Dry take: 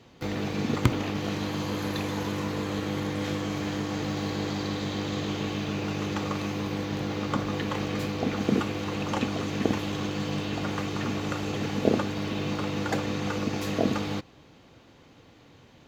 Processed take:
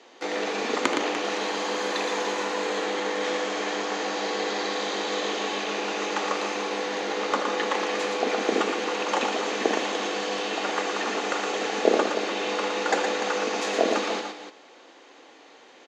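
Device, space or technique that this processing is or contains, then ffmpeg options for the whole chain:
phone speaker on a table: -filter_complex "[0:a]asettb=1/sr,asplit=3[link_01][link_02][link_03];[link_01]atrim=end=2.844[link_04];[link_02]atrim=start=2.84:end=4.68,asetpts=PTS-STARTPTS,afade=type=in:duration=0.004:curve=qsin,afade=type=out:start_time=1.836:duration=0.004:curve=qsin,lowpass=8300[link_05];[link_03]atrim=start=4.676[link_06];[link_04][link_05]acrossfade=duration=0.004:curve1=hsin:curve2=qsin[link_07];[link_07][link_06]acrossfade=duration=0.004:curve1=qsin:curve2=hsin,highpass=frequency=340:width=0.5412,highpass=frequency=340:width=1.3066,equalizer=frequency=790:width_type=q:width=4:gain=3,equalizer=frequency=1800:width_type=q:width=4:gain=3,equalizer=frequency=6800:width_type=q:width=4:gain=3,lowpass=frequency=8500:width=0.5412,lowpass=frequency=8500:width=1.3066,aecho=1:1:78|116|295:0.251|0.531|0.282,volume=4.5dB"

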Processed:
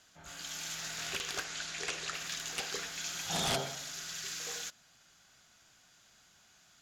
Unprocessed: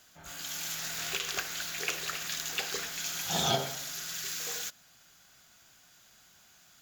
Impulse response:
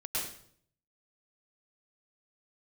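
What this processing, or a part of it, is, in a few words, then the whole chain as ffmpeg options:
overflowing digital effects unit: -filter_complex "[0:a]aeval=exprs='(mod(11.2*val(0)+1,2)-1)/11.2':channel_layout=same,lowpass=9000,asettb=1/sr,asplit=3[link_01][link_02][link_03];[link_01]atrim=end=1.444[link_04];[link_02]atrim=start=1.44:end=2.14,asetpts=PTS-STARTPTS,afade=type=in:duration=0.004:curve=qsin,afade=type=out:start_time=0.696:duration=0.004:curve=qsin,lowpass=frequency=10000:width=0.5412,lowpass=frequency=10000:width=1.3066[link_05];[link_03]atrim=start=2.136[link_06];[link_04][link_05]acrossfade=duration=0.004:curve1=hsin:curve2=qsin[link_07];[link_07][link_06]acrossfade=duration=0.004:curve1=qsin:curve2=hsin,volume=-2.5dB"

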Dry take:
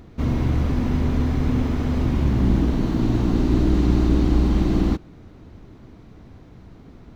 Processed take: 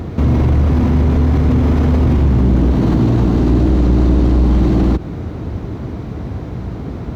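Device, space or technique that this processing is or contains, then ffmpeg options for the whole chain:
mastering chain: -af "highpass=frequency=52:width=0.5412,highpass=frequency=52:width=1.3066,equalizer=frequency=250:width_type=o:width=1.3:gain=-3.5,acompressor=threshold=-25dB:ratio=1.5,asoftclip=type=tanh:threshold=-15.5dB,tiltshelf=frequency=1200:gain=4.5,asoftclip=type=hard:threshold=-15.5dB,alimiter=level_in=24dB:limit=-1dB:release=50:level=0:latency=1,volume=-6dB"

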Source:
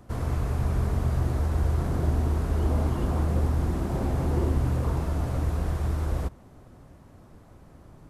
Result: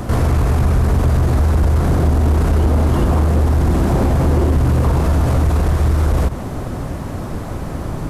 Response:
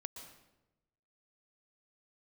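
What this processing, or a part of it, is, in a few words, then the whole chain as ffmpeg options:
loud club master: -af "acompressor=threshold=-27dB:ratio=2.5,asoftclip=type=hard:threshold=-25.5dB,alimiter=level_in=34.5dB:limit=-1dB:release=50:level=0:latency=1,volume=-8.5dB"

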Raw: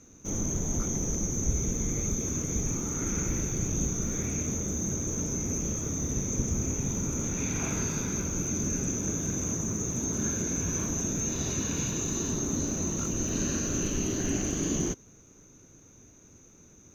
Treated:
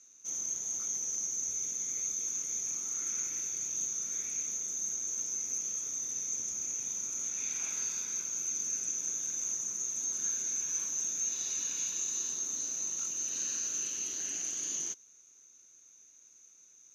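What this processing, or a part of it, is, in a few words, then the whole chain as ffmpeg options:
piezo pickup straight into a mixer: -af "lowpass=7900,aderivative,volume=2.5dB"

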